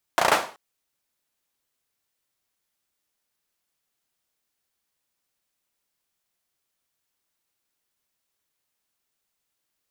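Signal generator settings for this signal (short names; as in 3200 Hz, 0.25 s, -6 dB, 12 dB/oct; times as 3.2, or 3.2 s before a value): hand clap length 0.38 s, bursts 5, apart 34 ms, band 770 Hz, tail 0.38 s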